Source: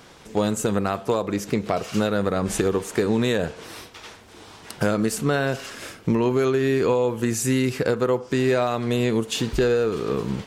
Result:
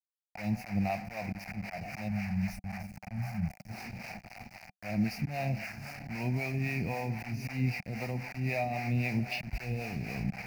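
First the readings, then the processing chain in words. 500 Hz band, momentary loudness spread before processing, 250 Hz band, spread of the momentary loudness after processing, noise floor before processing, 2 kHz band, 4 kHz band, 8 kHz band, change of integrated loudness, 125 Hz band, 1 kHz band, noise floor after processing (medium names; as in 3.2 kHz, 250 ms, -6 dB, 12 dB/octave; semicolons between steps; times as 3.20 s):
-20.0 dB, 11 LU, -11.5 dB, 11 LU, -47 dBFS, -7.5 dB, -14.5 dB, -21.0 dB, -12.0 dB, -5.0 dB, -10.5 dB, -70 dBFS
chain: dynamic bell 830 Hz, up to -3 dB, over -32 dBFS, Q 0.94; touch-sensitive phaser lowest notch 210 Hz, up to 1.5 kHz, full sweep at -21.5 dBFS; on a send: echo that smears into a reverb 663 ms, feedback 51%, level -15 dB; on the sum: spectral selection erased 2.08–3.69 s, 230–5200 Hz; repeats whose band climbs or falls 122 ms, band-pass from 1 kHz, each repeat 0.7 oct, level -7 dB; slow attack 160 ms; vibrato 0.48 Hz 5.2 cents; word length cut 6-bit, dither none; harmonic tremolo 3.8 Hz, depth 70%, crossover 420 Hz; FFT filter 190 Hz 0 dB, 440 Hz -21 dB, 740 Hz +6 dB, 1.1 kHz -13 dB, 2.4 kHz +8 dB, 3.4 kHz -26 dB, 4.8 kHz -3 dB, 7.7 kHz -18 dB, 15 kHz -11 dB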